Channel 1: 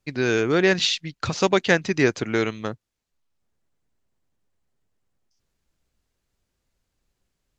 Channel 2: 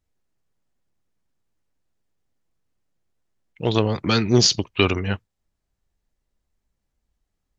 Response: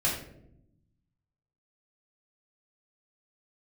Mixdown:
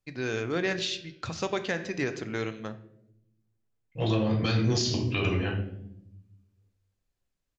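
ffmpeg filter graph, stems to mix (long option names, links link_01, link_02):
-filter_complex "[0:a]volume=-5.5dB,asplit=3[link_01][link_02][link_03];[link_02]volume=-17.5dB[link_04];[1:a]agate=range=-33dB:threshold=-47dB:ratio=3:detection=peak,adelay=350,volume=-7dB,asplit=2[link_05][link_06];[link_06]volume=-3.5dB[link_07];[link_03]apad=whole_len=349861[link_08];[link_05][link_08]sidechaincompress=threshold=-45dB:ratio=8:attack=16:release=1450[link_09];[2:a]atrim=start_sample=2205[link_10];[link_04][link_07]amix=inputs=2:normalize=0[link_11];[link_11][link_10]afir=irnorm=-1:irlink=0[link_12];[link_01][link_09][link_12]amix=inputs=3:normalize=0,flanger=delay=9.2:depth=5.9:regen=-90:speed=0.32:shape=triangular,alimiter=limit=-17dB:level=0:latency=1:release=97"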